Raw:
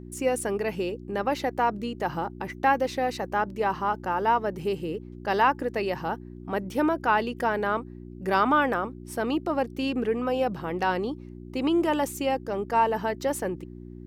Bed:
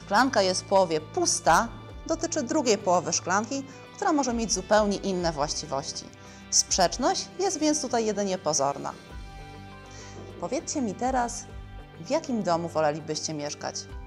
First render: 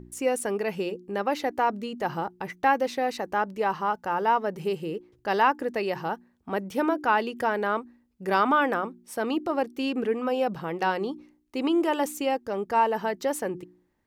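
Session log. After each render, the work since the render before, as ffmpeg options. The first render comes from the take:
-af "bandreject=f=60:t=h:w=4,bandreject=f=120:t=h:w=4,bandreject=f=180:t=h:w=4,bandreject=f=240:t=h:w=4,bandreject=f=300:t=h:w=4,bandreject=f=360:t=h:w=4"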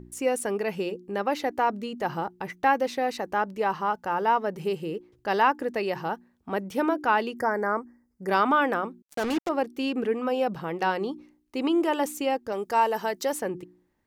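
-filter_complex "[0:a]asplit=3[a][b][c];[a]afade=t=out:st=7.36:d=0.02[d];[b]asuperstop=centerf=3200:order=12:qfactor=1.3,afade=t=in:st=7.36:d=0.02,afade=t=out:st=8.27:d=0.02[e];[c]afade=t=in:st=8.27:d=0.02[f];[d][e][f]amix=inputs=3:normalize=0,asettb=1/sr,asplit=3[g][h][i];[g]atrim=end=9.024[j];[h]atrim=start=9.02:end=9.49,asetpts=PTS-STARTPTS,afade=t=in:d=0.004:c=qsin,afade=t=out:st=0.466:d=0.004:c=qsin,acrusher=bits=4:mix=0:aa=0.5[k];[i]atrim=start=9.486[l];[j][k]acrossfade=d=0.004:c1=hsin:c2=qsin[m];[m][l]acrossfade=d=0.004:c1=qsin:c2=hsin,asettb=1/sr,asplit=3[n][o][p];[n]atrim=end=12.524[q];[o]atrim=start=12.52:end=13.33,asetpts=PTS-STARTPTS,afade=t=in:d=0.004:c=qsin,afade=t=out:st=0.806:d=0.004:c=qsin,bass=f=250:g=-6,treble=f=4k:g=9[r];[p]atrim=start=13.326[s];[q][r]acrossfade=d=0.004:c1=hsin:c2=qsin[t];[t][s]acrossfade=d=0.004:c1=qsin:c2=hsin"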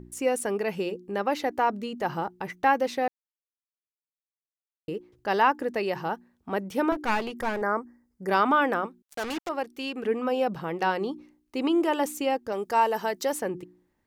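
-filter_complex "[0:a]asettb=1/sr,asplit=3[a][b][c];[a]atrim=end=6.924[d];[b]atrim=start=6.92:end=7.62,asetpts=PTS-STARTPTS,afade=t=in:d=0.004:c=qsin,afade=t=out:st=0.696:d=0.004:c=qsin,aeval=exprs='clip(val(0),-1,0.0224)':c=same[e];[c]atrim=start=7.616[f];[d][e]acrossfade=d=0.004:c1=hsin:c2=qsin[g];[g][f]acrossfade=d=0.004:c1=qsin:c2=hsin,asettb=1/sr,asplit=3[h][i][j];[h]atrim=end=8.864[k];[i]atrim=start=8.86:end=10.05,asetpts=PTS-STARTPTS,afade=t=in:d=0.004:c=qsin,afade=t=out:st=1.186:d=0.004:c=qsin,equalizer=f=220:w=0.38:g=-7.5[l];[j]atrim=start=10.046[m];[k][l]acrossfade=d=0.004:c1=hsin:c2=qsin[n];[n][m]acrossfade=d=0.004:c1=qsin:c2=hsin,asplit=3[o][p][q];[o]atrim=end=3.08,asetpts=PTS-STARTPTS,afade=t=out:st=3.076:d=0.004:c=hsin[r];[p]atrim=start=3.08:end=4.88,asetpts=PTS-STARTPTS,volume=0[s];[q]atrim=start=4.88,asetpts=PTS-STARTPTS,afade=t=in:d=0.004:c=hsin[t];[r][s][t]concat=n=3:v=0:a=1"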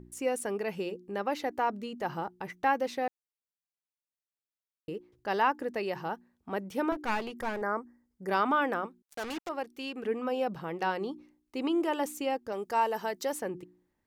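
-af "volume=-5dB"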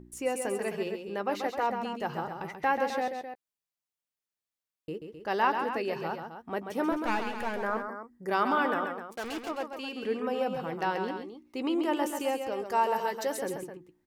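-filter_complex "[0:a]asplit=2[a][b];[b]adelay=13,volume=-13.5dB[c];[a][c]amix=inputs=2:normalize=0,aecho=1:1:135|260:0.447|0.299"

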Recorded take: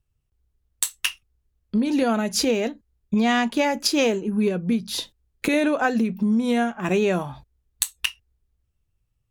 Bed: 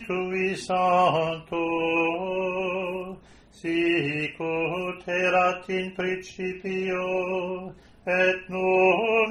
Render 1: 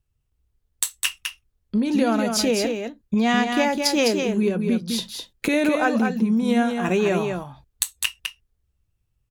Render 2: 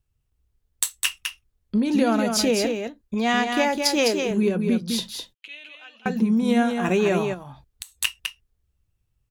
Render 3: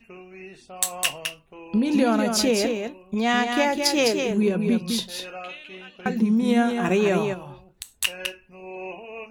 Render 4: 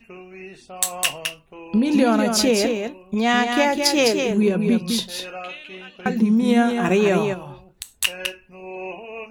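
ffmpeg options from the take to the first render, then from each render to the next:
-af "aecho=1:1:206:0.531"
-filter_complex "[0:a]asettb=1/sr,asplit=3[a][b][c];[a]atrim=end=2.874[d];[b]atrim=start=2.87:end=4.31,asetpts=PTS-STARTPTS,afade=t=in:d=0.004:c=qsin,afade=t=out:st=1.436:d=0.004:c=qsin,equalizer=f=160:t=o:w=0.77:g=-11.5[e];[c]atrim=start=4.306[f];[d][e]acrossfade=d=0.004:c1=hsin:c2=qsin[g];[g][f]acrossfade=d=0.004:c1=qsin:c2=hsin,asettb=1/sr,asplit=3[h][i][j];[h]atrim=end=5.344[k];[i]atrim=start=5.34:end=6.06,asetpts=PTS-STARTPTS,afade=t=in:d=0.004:c=qsin,afade=t=out:st=0.716:d=0.004:c=qsin,bandpass=f=3k:t=q:w=9.9[l];[j]atrim=start=6.056[m];[k][l]acrossfade=d=0.004:c1=hsin:c2=qsin[n];[n][m]acrossfade=d=0.004:c1=qsin:c2=hsin,asplit=3[o][p][q];[o]afade=t=out:st=7.33:d=0.02[r];[p]acompressor=threshold=-35dB:ratio=4:attack=3.2:release=140:knee=1:detection=peak,afade=t=in:st=7.33:d=0.02,afade=t=out:st=7.95:d=0.02[s];[q]afade=t=in:st=7.95:d=0.02[t];[r][s][t]amix=inputs=3:normalize=0"
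-filter_complex "[1:a]volume=-16dB[a];[0:a][a]amix=inputs=2:normalize=0"
-af "volume=3dB,alimiter=limit=-3dB:level=0:latency=1"

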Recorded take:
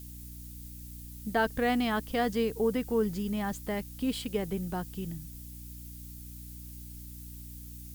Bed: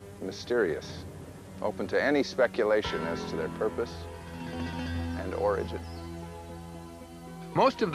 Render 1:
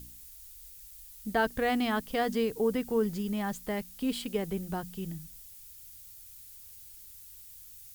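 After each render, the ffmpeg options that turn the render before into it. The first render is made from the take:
-af "bandreject=f=60:t=h:w=4,bandreject=f=120:t=h:w=4,bandreject=f=180:t=h:w=4,bandreject=f=240:t=h:w=4,bandreject=f=300:t=h:w=4"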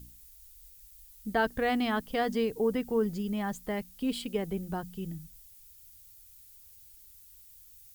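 -af "afftdn=nr=6:nf=-50"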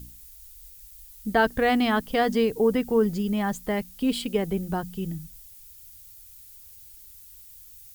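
-af "volume=6.5dB"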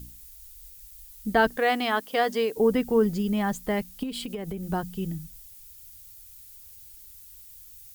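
-filter_complex "[0:a]asettb=1/sr,asplit=3[a][b][c];[a]atrim=end=1.574[d];[b]atrim=start=1.57:end=2.57,asetpts=PTS-STARTPTS,afade=t=in:d=0.004:c=qsin,afade=t=out:st=0.996:d=0.004:c=qsin,highpass=380[e];[c]atrim=start=2.566[f];[d][e]acrossfade=d=0.004:c1=hsin:c2=qsin[g];[g][f]acrossfade=d=0.004:c1=qsin:c2=hsin,asettb=1/sr,asplit=3[h][i][j];[h]atrim=end=4.034[k];[i]atrim=start=4.03:end=4.68,asetpts=PTS-STARTPTS,afade=t=in:d=0.004:c=qsin,afade=t=out:st=0.646:d=0.004:c=qsin,acompressor=threshold=-29dB:ratio=10:attack=3.2:release=140:knee=1:detection=peak[l];[j]atrim=start=4.676[m];[k][l]acrossfade=d=0.004:c1=hsin:c2=qsin[n];[n][m]acrossfade=d=0.004:c1=qsin:c2=hsin"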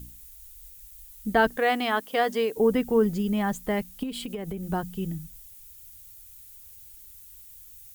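-af "equalizer=f=4.8k:t=o:w=0.55:g=-4"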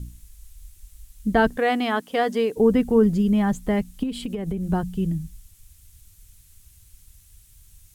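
-af "lowpass=11k,lowshelf=f=280:g=10.5"

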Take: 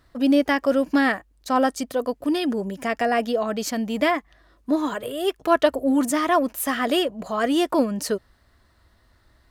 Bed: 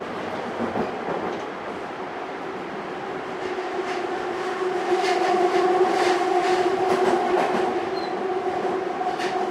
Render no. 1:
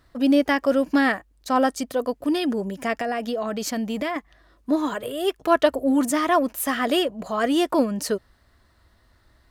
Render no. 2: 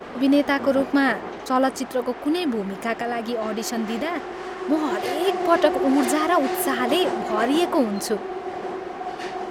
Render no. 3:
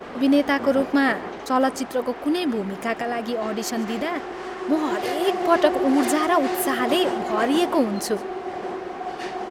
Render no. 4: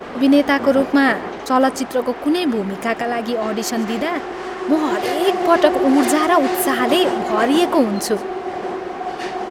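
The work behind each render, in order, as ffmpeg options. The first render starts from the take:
-filter_complex "[0:a]asettb=1/sr,asplit=3[a][b][c];[a]atrim=end=3.004[d];[b]atrim=start=3:end=4.16,asetpts=PTS-STARTPTS,afade=t=in:d=0.004:c=qsin,afade=t=out:st=1.156:d=0.004:c=qsin,acompressor=threshold=-22dB:ratio=6:attack=3.2:release=140:knee=1:detection=peak[e];[c]atrim=start=4.156[f];[d][e]acrossfade=d=0.004:c1=hsin:c2=qsin[g];[g][f]acrossfade=d=0.004:c1=qsin:c2=hsin"
-filter_complex "[1:a]volume=-5.5dB[a];[0:a][a]amix=inputs=2:normalize=0"
-af "aecho=1:1:145:0.0841"
-af "volume=5dB,alimiter=limit=-1dB:level=0:latency=1"

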